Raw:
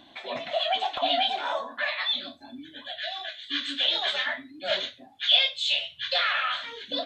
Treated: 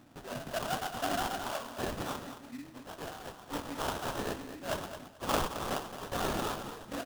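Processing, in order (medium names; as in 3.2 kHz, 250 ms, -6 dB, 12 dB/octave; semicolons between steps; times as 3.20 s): graphic EQ 125/500/1000/4000 Hz +10/-5/-7/-10 dB; sample-rate reducer 2.2 kHz, jitter 20%; feedback delay 219 ms, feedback 20%, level -10.5 dB; trim -2 dB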